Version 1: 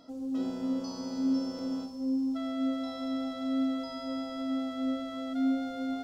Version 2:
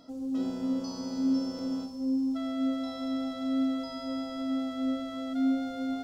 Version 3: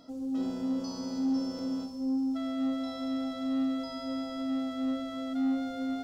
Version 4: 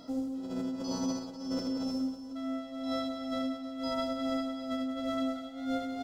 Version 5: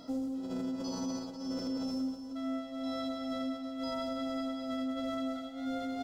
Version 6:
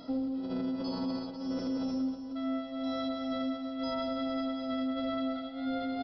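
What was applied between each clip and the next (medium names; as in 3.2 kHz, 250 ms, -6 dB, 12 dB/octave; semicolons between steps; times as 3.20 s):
tone controls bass +3 dB, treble +2 dB
saturation -22.5 dBFS, distortion -21 dB
compressor with a negative ratio -38 dBFS, ratio -1; on a send: reverse bouncing-ball echo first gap 80 ms, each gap 1.3×, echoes 5
peak limiter -28.5 dBFS, peak gain reduction 6 dB
resampled via 11.025 kHz; trim +2.5 dB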